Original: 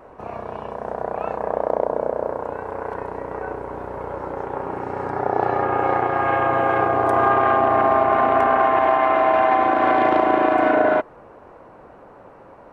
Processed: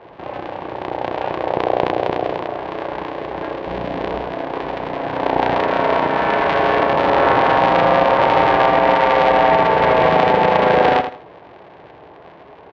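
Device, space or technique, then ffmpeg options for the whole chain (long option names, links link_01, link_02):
ring modulator pedal into a guitar cabinet: -filter_complex "[0:a]asettb=1/sr,asplit=3[link_01][link_02][link_03];[link_01]atrim=end=3.664[link_04];[link_02]atrim=start=3.66:end=4.22,asetpts=PTS-STARTPTS,afade=type=in:duration=0.004:curve=qsin,afade=type=out:start_time=0.556:duration=0.004:curve=qsin,lowshelf=frequency=320:gain=11.5[link_05];[link_03]atrim=start=4.216[link_06];[link_04][link_05]acrossfade=duration=0.004:curve1=hsin:curve2=qsin[link_07];[link_07][link_06]acrossfade=duration=0.004:curve1=qsin:curve2=hsin,aeval=exprs='val(0)*sgn(sin(2*PI*120*n/s))':channel_layout=same,highpass=84,equalizer=frequency=90:width_type=q:width=4:gain=-4,equalizer=frequency=220:width_type=q:width=4:gain=-9,equalizer=frequency=1300:width_type=q:width=4:gain=-8,lowpass=frequency=3600:width=0.5412,lowpass=frequency=3600:width=1.3066,aecho=1:1:81|162|243:0.355|0.0887|0.0222,volume=4dB"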